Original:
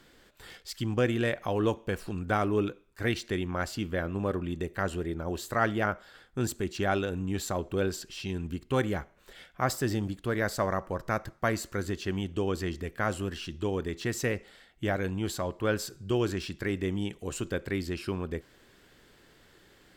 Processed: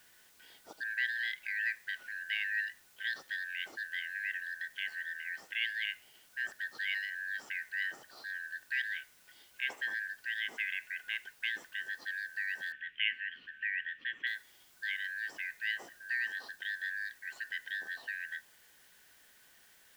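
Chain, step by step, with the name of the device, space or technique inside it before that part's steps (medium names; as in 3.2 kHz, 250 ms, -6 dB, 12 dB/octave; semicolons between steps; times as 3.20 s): split-band scrambled radio (four frequency bands reordered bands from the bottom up 4123; band-pass 310–3400 Hz; white noise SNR 24 dB); 12.72–14.27 s: FFT filter 240 Hz 0 dB, 570 Hz -12 dB, 830 Hz -25 dB, 2 kHz +5 dB, 3 kHz +8 dB, 4.3 kHz -19 dB, 11 kHz -28 dB; trim -7.5 dB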